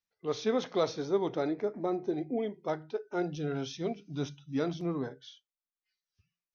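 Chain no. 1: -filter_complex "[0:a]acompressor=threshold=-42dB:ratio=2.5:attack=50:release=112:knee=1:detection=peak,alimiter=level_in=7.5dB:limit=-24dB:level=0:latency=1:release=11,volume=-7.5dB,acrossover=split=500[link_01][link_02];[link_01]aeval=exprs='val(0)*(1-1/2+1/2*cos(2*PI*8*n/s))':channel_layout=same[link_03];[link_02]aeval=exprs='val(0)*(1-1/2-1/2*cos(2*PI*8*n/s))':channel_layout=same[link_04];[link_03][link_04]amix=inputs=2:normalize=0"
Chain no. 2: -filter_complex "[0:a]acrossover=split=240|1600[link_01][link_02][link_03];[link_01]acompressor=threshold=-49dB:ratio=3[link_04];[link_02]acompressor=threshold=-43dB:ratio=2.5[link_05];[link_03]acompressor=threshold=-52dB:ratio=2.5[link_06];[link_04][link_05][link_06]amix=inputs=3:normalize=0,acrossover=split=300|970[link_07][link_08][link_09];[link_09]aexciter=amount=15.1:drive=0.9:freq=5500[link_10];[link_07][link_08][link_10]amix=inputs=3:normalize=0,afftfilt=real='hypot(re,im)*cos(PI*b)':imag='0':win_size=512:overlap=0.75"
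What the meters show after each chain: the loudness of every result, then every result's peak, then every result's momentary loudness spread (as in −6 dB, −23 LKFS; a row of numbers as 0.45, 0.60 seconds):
−46.5, −44.0 LKFS; −32.5, −27.5 dBFS; 5, 6 LU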